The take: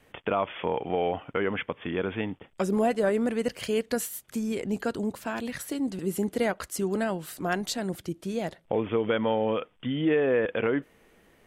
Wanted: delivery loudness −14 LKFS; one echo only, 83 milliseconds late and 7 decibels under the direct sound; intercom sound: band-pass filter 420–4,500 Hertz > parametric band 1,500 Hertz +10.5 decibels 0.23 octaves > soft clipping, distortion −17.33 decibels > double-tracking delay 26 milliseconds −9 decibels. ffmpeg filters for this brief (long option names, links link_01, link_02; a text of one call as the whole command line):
ffmpeg -i in.wav -filter_complex "[0:a]highpass=420,lowpass=4500,equalizer=frequency=1500:width_type=o:width=0.23:gain=10.5,aecho=1:1:83:0.447,asoftclip=threshold=-19.5dB,asplit=2[link_01][link_02];[link_02]adelay=26,volume=-9dB[link_03];[link_01][link_03]amix=inputs=2:normalize=0,volume=17dB" out.wav